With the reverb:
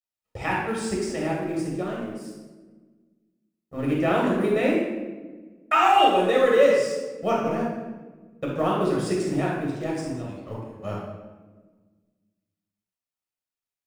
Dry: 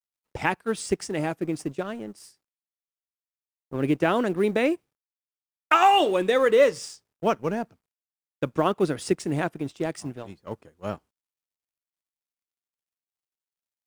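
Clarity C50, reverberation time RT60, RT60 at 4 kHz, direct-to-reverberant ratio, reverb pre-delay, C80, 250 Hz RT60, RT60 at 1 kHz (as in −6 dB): 0.0 dB, 1.3 s, 0.80 s, −4.5 dB, 11 ms, 3.5 dB, 2.1 s, 1.1 s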